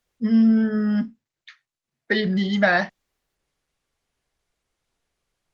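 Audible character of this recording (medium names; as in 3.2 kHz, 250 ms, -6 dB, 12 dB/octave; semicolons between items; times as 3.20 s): Opus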